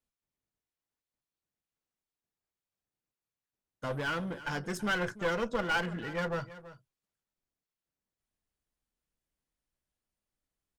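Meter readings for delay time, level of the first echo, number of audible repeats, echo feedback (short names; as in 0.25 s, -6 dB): 0.329 s, -16.0 dB, 1, no steady repeat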